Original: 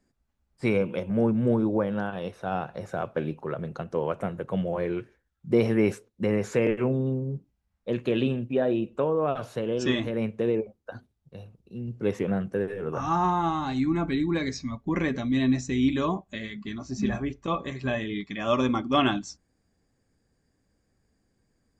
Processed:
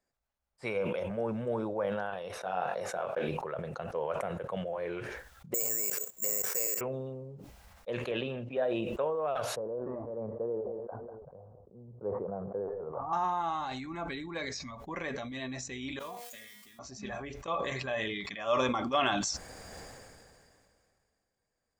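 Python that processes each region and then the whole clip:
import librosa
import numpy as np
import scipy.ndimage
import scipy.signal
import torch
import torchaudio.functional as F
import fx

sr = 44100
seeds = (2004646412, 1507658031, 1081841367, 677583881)

y = fx.chain(x, sr, fx.highpass(hz=150.0, slope=12),
    fx.doubler(ms=22.0, db=-5.5), at=(2.38, 3.29))
y = fx.chain(y, sr, fx.highpass(hz=220.0, slope=6),
    fx.level_steps(step_db=16),
    fx.resample_bad(factor=6, down='filtered', up='zero_stuff'), at=(5.54, 6.81))
y = fx.chain(y, sr, fx.air_absorb(metres=110.0),
    fx.band_squash(depth_pct=70), at=(8.11, 8.57))
y = fx.chain(y, sr, fx.steep_lowpass(hz=1100.0, slope=36),
    fx.echo_feedback(ms=193, feedback_pct=49, wet_db=-22.5), at=(9.56, 13.13))
y = fx.chain(y, sr, fx.crossing_spikes(level_db=-30.5),
    fx.notch(hz=1100.0, q=24.0),
    fx.comb_fb(f0_hz=240.0, decay_s=0.48, harmonics='all', damping=0.0, mix_pct=90), at=(15.99, 16.79))
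y = fx.low_shelf_res(y, sr, hz=410.0, db=-9.5, q=1.5)
y = fx.transient(y, sr, attack_db=2, sustain_db=-3)
y = fx.sustainer(y, sr, db_per_s=25.0)
y = y * librosa.db_to_amplitude(-7.5)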